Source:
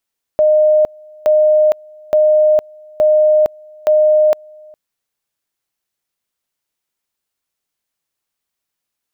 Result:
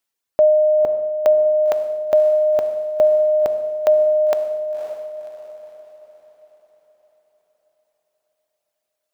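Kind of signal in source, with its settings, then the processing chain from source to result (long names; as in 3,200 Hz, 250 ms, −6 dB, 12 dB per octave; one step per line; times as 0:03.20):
tone at two levels in turn 613 Hz −7.5 dBFS, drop 28.5 dB, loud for 0.46 s, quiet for 0.41 s, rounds 5
reverb reduction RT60 1 s
low-shelf EQ 190 Hz −6 dB
on a send: feedback delay with all-pass diffusion 542 ms, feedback 46%, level −8 dB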